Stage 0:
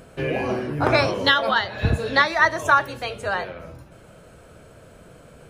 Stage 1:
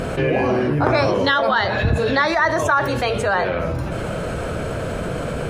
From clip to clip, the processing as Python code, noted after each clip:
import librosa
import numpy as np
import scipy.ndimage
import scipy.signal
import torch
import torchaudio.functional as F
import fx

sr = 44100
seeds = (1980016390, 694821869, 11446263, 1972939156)

y = fx.lowpass(x, sr, hz=4000.0, slope=6)
y = fx.dynamic_eq(y, sr, hz=2800.0, q=1.6, threshold_db=-36.0, ratio=4.0, max_db=-5)
y = fx.env_flatten(y, sr, amount_pct=70)
y = y * 10.0 ** (-1.5 / 20.0)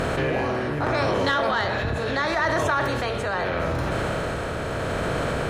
y = fx.bin_compress(x, sr, power=0.6)
y = 10.0 ** (-5.0 / 20.0) * np.tanh(y / 10.0 ** (-5.0 / 20.0))
y = y * (1.0 - 0.34 / 2.0 + 0.34 / 2.0 * np.cos(2.0 * np.pi * 0.77 * (np.arange(len(y)) / sr)))
y = y * 10.0 ** (-6.5 / 20.0)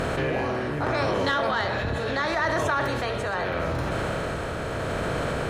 y = x + 10.0 ** (-16.5 / 20.0) * np.pad(x, (int(669 * sr / 1000.0), 0))[:len(x)]
y = y * 10.0 ** (-2.0 / 20.0)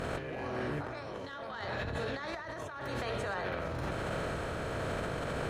y = fx.over_compress(x, sr, threshold_db=-28.0, ratio=-0.5)
y = y * 10.0 ** (-8.5 / 20.0)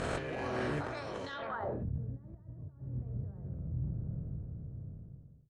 y = fx.fade_out_tail(x, sr, length_s=1.57)
y = fx.filter_sweep_lowpass(y, sr, from_hz=8600.0, to_hz=140.0, start_s=1.25, end_s=1.91, q=1.6)
y = y * 10.0 ** (1.0 / 20.0)